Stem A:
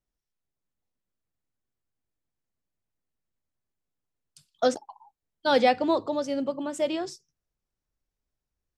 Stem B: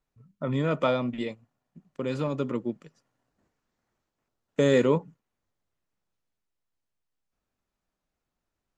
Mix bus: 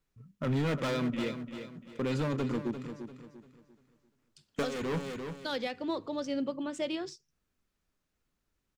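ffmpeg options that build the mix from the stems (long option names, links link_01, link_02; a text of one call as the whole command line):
ffmpeg -i stem1.wav -i stem2.wav -filter_complex "[0:a]highshelf=frequency=2700:gain=7.5,adynamicsmooth=sensitivity=1:basefreq=4000,volume=-2dB[link_01];[1:a]asoftclip=type=hard:threshold=-28dB,volume=2.5dB,asplit=2[link_02][link_03];[link_03]volume=-10dB,aecho=0:1:345|690|1035|1380|1725:1|0.34|0.116|0.0393|0.0134[link_04];[link_01][link_02][link_04]amix=inputs=3:normalize=0,equalizer=frequency=740:width_type=o:width=1:gain=-7,alimiter=limit=-24dB:level=0:latency=1:release=415" out.wav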